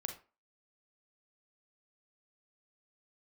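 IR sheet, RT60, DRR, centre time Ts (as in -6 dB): 0.35 s, 4.0 dB, 16 ms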